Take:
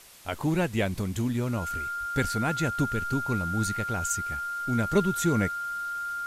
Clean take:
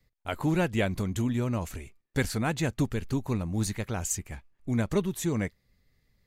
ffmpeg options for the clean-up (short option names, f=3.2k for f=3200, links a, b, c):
-filter_complex "[0:a]bandreject=f=1.4k:w=30,asplit=3[a][b][c];[a]afade=t=out:st=1.99:d=0.02[d];[b]highpass=f=140:w=0.5412,highpass=f=140:w=1.3066,afade=t=in:st=1.99:d=0.02,afade=t=out:st=2.11:d=0.02[e];[c]afade=t=in:st=2.11:d=0.02[f];[d][e][f]amix=inputs=3:normalize=0,afwtdn=0.0032,asetnsamples=n=441:p=0,asendcmd='4.95 volume volume -3.5dB',volume=0dB"